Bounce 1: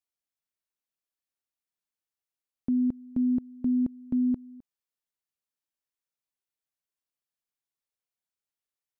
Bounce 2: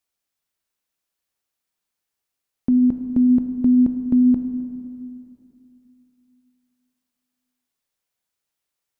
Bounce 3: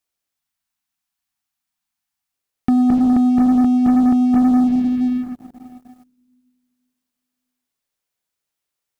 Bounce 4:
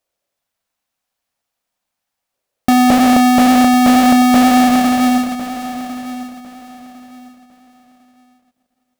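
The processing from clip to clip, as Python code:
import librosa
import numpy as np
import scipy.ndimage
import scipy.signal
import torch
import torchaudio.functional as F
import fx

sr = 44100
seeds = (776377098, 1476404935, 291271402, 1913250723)

y1 = fx.rev_plate(x, sr, seeds[0], rt60_s=2.8, hf_ratio=0.9, predelay_ms=0, drr_db=6.5)
y1 = F.gain(torch.from_numpy(y1), 9.0).numpy()
y2 = fx.spec_erase(y1, sr, start_s=0.39, length_s=1.95, low_hz=320.0, high_hz=660.0)
y2 = fx.over_compress(y2, sr, threshold_db=-19.0, ratio=-0.5)
y2 = fx.leveller(y2, sr, passes=3)
y2 = F.gain(torch.from_numpy(y2), 1.5).numpy()
y3 = fx.halfwave_hold(y2, sr)
y3 = fx.peak_eq(y3, sr, hz=560.0, db=12.5, octaves=0.81)
y3 = fx.echo_feedback(y3, sr, ms=1053, feedback_pct=25, wet_db=-13.5)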